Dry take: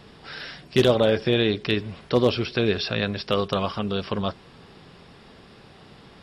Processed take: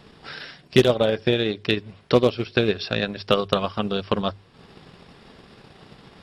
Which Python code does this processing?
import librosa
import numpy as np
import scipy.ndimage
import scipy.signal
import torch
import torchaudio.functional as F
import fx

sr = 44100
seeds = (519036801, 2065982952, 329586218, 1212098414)

p1 = fx.rattle_buzz(x, sr, strikes_db=-21.0, level_db=-29.0)
p2 = fx.rider(p1, sr, range_db=10, speed_s=2.0)
p3 = p1 + F.gain(torch.from_numpy(p2), 3.0).numpy()
p4 = fx.transient(p3, sr, attack_db=7, sustain_db=-7)
p5 = fx.hum_notches(p4, sr, base_hz=50, count=2)
y = F.gain(torch.from_numpy(p5), -9.5).numpy()